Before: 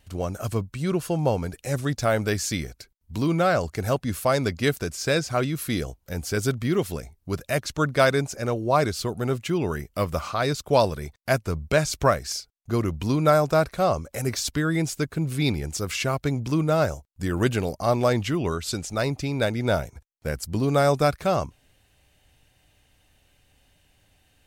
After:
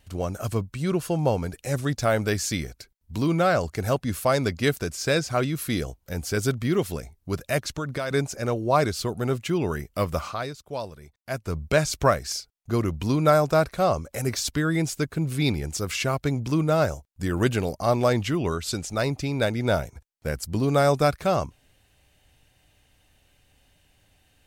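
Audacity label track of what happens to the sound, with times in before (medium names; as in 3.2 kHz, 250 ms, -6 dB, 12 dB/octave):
7.600000	8.110000	compression 16:1, threshold -24 dBFS
10.200000	11.590000	dip -13 dB, fades 0.33 s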